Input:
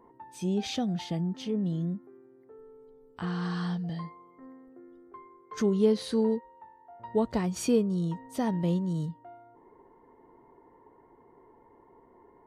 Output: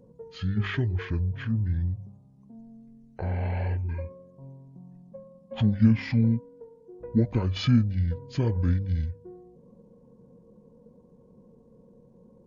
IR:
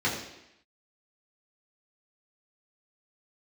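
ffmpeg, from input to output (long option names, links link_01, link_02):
-af "asetrate=22696,aresample=44100,atempo=1.94306,bandreject=frequency=99.06:width_type=h:width=4,bandreject=frequency=198.12:width_type=h:width=4,bandreject=frequency=297.18:width_type=h:width=4,bandreject=frequency=396.24:width_type=h:width=4,bandreject=frequency=495.3:width_type=h:width=4,bandreject=frequency=594.36:width_type=h:width=4,bandreject=frequency=693.42:width_type=h:width=4,bandreject=frequency=792.48:width_type=h:width=4,bandreject=frequency=891.54:width_type=h:width=4,bandreject=frequency=990.6:width_type=h:width=4,bandreject=frequency=1089.66:width_type=h:width=4,volume=4dB"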